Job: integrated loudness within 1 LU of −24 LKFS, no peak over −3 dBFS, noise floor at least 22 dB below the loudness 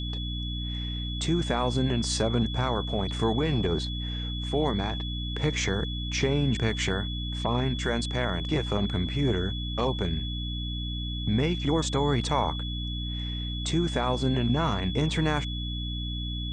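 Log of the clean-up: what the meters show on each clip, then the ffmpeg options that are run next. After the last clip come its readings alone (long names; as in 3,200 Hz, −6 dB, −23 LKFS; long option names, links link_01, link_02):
mains hum 60 Hz; hum harmonics up to 300 Hz; level of the hum −30 dBFS; interfering tone 3,400 Hz; level of the tone −36 dBFS; integrated loudness −28.0 LKFS; sample peak −12.5 dBFS; target loudness −24.0 LKFS
→ -af "bandreject=frequency=60:width_type=h:width=4,bandreject=frequency=120:width_type=h:width=4,bandreject=frequency=180:width_type=h:width=4,bandreject=frequency=240:width_type=h:width=4,bandreject=frequency=300:width_type=h:width=4"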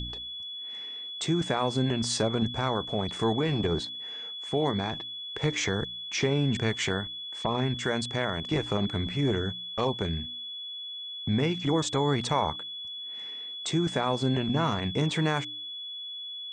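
mains hum none found; interfering tone 3,400 Hz; level of the tone −36 dBFS
→ -af "bandreject=frequency=3400:width=30"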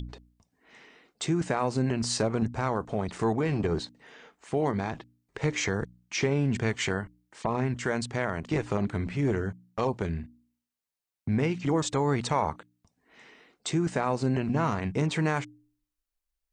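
interfering tone none found; integrated loudness −29.5 LKFS; sample peak −14.0 dBFS; target loudness −24.0 LKFS
→ -af "volume=5.5dB"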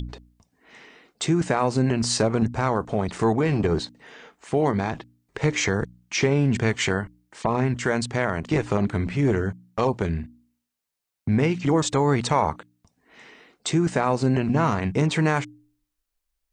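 integrated loudness −24.0 LKFS; sample peak −8.5 dBFS; background noise floor −81 dBFS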